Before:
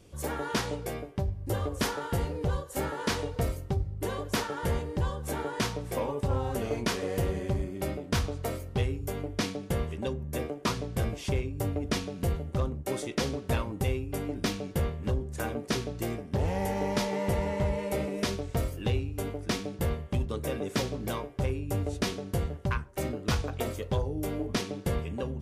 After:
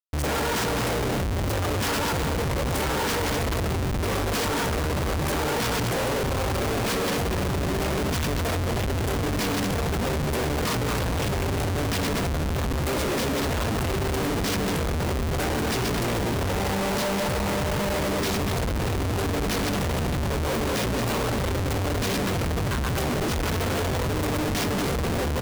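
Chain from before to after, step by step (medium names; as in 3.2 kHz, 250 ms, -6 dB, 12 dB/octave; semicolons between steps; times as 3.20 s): chunks repeated in reverse 100 ms, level -3.5 dB; delay 238 ms -9 dB; Schmitt trigger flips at -40.5 dBFS; trim +4 dB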